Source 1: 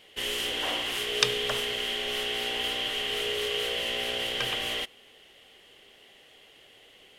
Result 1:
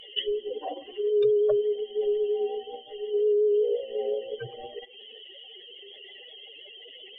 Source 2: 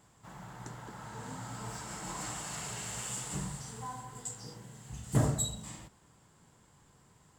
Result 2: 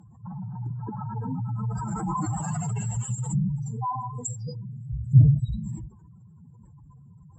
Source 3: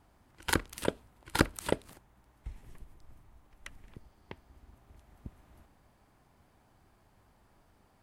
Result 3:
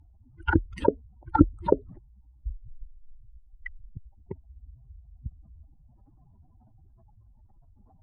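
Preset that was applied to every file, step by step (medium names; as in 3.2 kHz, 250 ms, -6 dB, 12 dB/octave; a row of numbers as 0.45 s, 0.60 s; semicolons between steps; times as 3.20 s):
spectral contrast enhancement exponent 3.6; vibrato 5.6 Hz 26 cents; low-pass that closes with the level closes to 570 Hz, closed at -28.5 dBFS; normalise loudness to -27 LUFS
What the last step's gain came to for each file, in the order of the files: +9.5 dB, +13.5 dB, +9.5 dB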